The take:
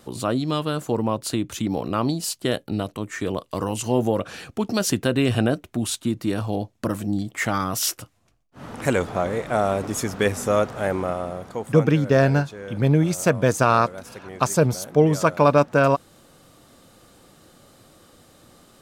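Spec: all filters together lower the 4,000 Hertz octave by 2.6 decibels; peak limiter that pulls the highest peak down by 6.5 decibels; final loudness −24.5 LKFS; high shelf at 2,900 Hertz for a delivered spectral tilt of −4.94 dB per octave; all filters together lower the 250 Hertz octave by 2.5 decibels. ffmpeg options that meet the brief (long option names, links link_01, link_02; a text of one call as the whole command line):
ffmpeg -i in.wav -af "equalizer=frequency=250:width_type=o:gain=-3.5,highshelf=frequency=2900:gain=5.5,equalizer=frequency=4000:width_type=o:gain=-8.5,volume=0.5dB,alimiter=limit=-10.5dB:level=0:latency=1" out.wav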